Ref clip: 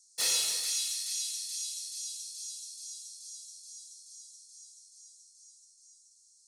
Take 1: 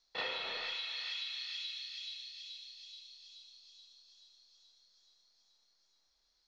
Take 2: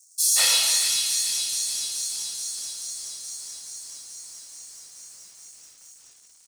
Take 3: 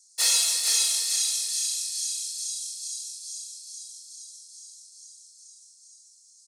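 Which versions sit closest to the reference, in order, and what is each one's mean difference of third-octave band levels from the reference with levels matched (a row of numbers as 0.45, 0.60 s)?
3, 2, 1; 2.0, 7.0, 9.5 dB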